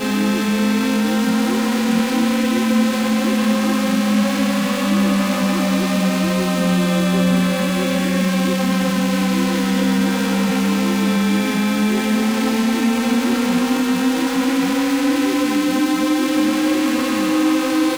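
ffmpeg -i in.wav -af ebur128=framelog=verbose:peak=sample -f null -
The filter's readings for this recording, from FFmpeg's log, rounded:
Integrated loudness:
  I:         -17.6 LUFS
  Threshold: -27.6 LUFS
Loudness range:
  LRA:         0.4 LU
  Threshold: -37.6 LUFS
  LRA low:   -17.7 LUFS
  LRA high:  -17.4 LUFS
Sample peak:
  Peak:       -6.2 dBFS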